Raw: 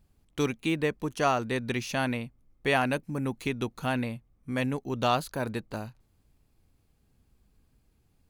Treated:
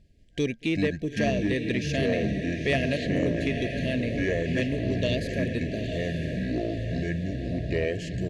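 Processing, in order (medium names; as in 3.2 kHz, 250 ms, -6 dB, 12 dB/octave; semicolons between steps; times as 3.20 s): ever faster or slower copies 186 ms, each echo -7 st, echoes 2; low-pass 5.7 kHz 12 dB/octave; on a send: echo that smears into a reverb 907 ms, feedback 51%, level -8 dB; on the sum: FFT band-reject 710–1600 Hz; echo from a far wall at 39 m, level -29 dB; in parallel at -0.5 dB: compression, threshold -38 dBFS, peak gain reduction 16.5 dB; on the sum: saturation -13 dBFS, distortion -26 dB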